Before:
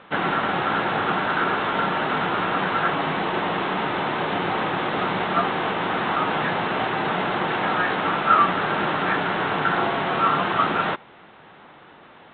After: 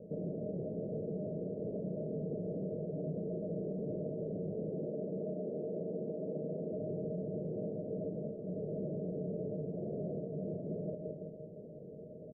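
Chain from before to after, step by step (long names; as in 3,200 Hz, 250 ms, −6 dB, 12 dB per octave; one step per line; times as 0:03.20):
0:04.70–0:06.73: high-pass filter 190 Hz 12 dB per octave
repeating echo 162 ms, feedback 37%, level −12 dB
downward compressor 10 to 1, threshold −31 dBFS, peak gain reduction 19.5 dB
Chebyshev low-pass with heavy ripple 640 Hz, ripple 9 dB
convolution reverb RT60 0.85 s, pre-delay 75 ms, DRR 12 dB
brickwall limiter −37.5 dBFS, peak gain reduction 6.5 dB
level +7 dB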